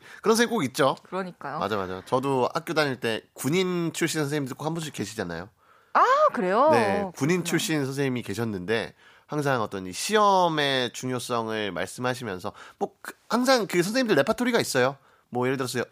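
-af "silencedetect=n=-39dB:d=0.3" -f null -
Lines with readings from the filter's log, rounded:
silence_start: 5.46
silence_end: 5.95 | silence_duration: 0.49
silence_start: 8.90
silence_end: 9.31 | silence_duration: 0.41
silence_start: 14.94
silence_end: 15.33 | silence_duration: 0.39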